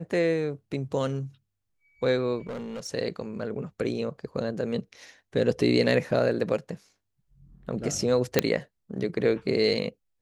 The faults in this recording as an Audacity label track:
2.470000	2.870000	clipped -31.5 dBFS
6.110000	6.110000	dropout 2.8 ms
8.390000	8.390000	pop -4 dBFS

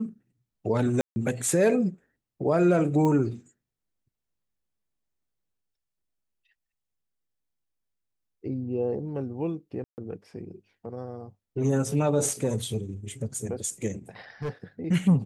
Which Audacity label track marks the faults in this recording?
1.010000	1.160000	dropout 150 ms
3.050000	3.050000	pop -17 dBFS
9.840000	9.980000	dropout 139 ms
14.420000	14.640000	clipped -27 dBFS

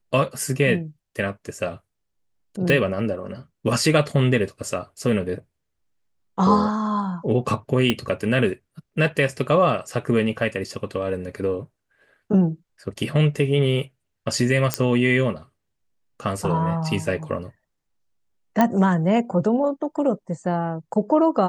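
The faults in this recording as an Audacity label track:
2.700000	2.700000	pop -9 dBFS
7.900000	7.900000	pop -6 dBFS
14.740000	14.740000	pop -3 dBFS
18.610000	18.610000	pop -6 dBFS

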